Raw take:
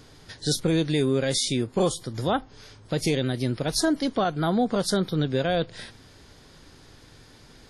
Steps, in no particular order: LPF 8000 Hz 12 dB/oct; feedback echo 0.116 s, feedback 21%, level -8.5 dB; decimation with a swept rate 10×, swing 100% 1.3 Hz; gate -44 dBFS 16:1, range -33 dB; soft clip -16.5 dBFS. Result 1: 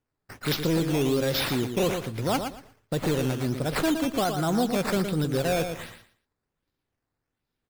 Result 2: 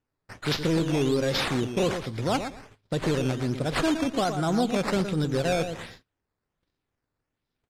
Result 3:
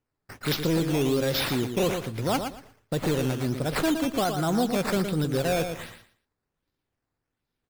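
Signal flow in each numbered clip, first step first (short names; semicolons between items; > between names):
LPF > gate > decimation with a swept rate > feedback echo > soft clip; soft clip > feedback echo > decimation with a swept rate > LPF > gate; LPF > decimation with a swept rate > gate > feedback echo > soft clip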